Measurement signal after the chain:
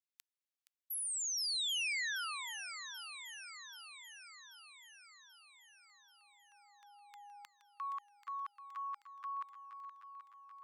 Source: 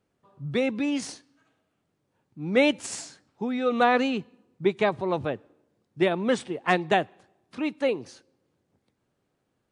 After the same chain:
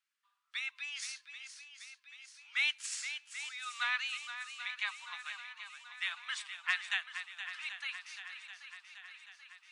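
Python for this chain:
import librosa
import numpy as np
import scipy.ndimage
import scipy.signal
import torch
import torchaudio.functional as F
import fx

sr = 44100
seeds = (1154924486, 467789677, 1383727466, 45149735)

p1 = scipy.signal.sosfilt(scipy.signal.bessel(8, 2200.0, 'highpass', norm='mag', fs=sr, output='sos'), x)
p2 = fx.high_shelf(p1, sr, hz=5600.0, db=-7.0)
y = p2 + fx.echo_swing(p2, sr, ms=784, ratio=1.5, feedback_pct=58, wet_db=-10.0, dry=0)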